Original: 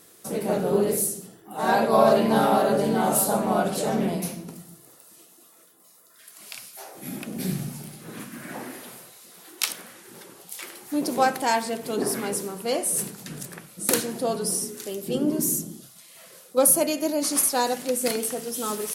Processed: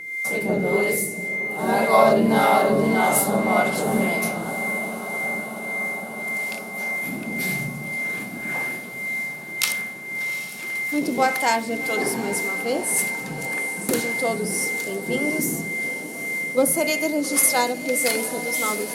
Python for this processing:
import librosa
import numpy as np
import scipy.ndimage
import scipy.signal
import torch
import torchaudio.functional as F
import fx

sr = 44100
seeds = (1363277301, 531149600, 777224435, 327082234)

p1 = x + 10.0 ** (-28.0 / 20.0) * np.sin(2.0 * np.pi * 2100.0 * np.arange(len(x)) / sr)
p2 = fx.backlash(p1, sr, play_db=-39.5)
p3 = p1 + (p2 * 10.0 ** (-7.5 / 20.0))
p4 = fx.harmonic_tremolo(p3, sr, hz=1.8, depth_pct=70, crossover_hz=500.0)
p5 = p4 + fx.echo_diffused(p4, sr, ms=773, feedback_pct=74, wet_db=-13.0, dry=0)
p6 = fx.end_taper(p5, sr, db_per_s=160.0)
y = p6 * 10.0 ** (2.0 / 20.0)